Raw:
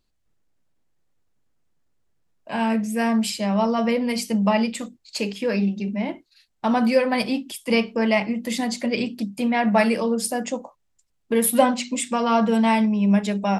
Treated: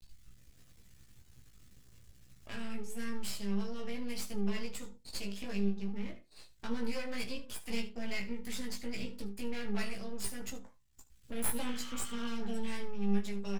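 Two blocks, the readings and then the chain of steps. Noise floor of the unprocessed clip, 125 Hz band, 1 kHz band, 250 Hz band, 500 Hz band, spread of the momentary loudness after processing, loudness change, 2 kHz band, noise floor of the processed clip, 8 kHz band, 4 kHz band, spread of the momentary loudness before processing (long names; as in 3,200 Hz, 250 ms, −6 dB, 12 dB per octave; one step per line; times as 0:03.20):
−70 dBFS, can't be measured, −24.5 dB, −17.0 dB, −20.0 dB, 10 LU, −17.5 dB, −16.0 dB, −61 dBFS, −12.5 dB, −13.0 dB, 10 LU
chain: healed spectral selection 0:11.68–0:12.24, 1,100–3,800 Hz both
guitar amp tone stack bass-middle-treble 6-0-2
upward compression, threshold −40 dBFS
half-wave rectification
multi-voice chorus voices 4, 0.19 Hz, delay 16 ms, depth 1.2 ms
on a send: ambience of single reflections 25 ms −14 dB, 75 ms −16.5 dB
on the sum: level +9.5 dB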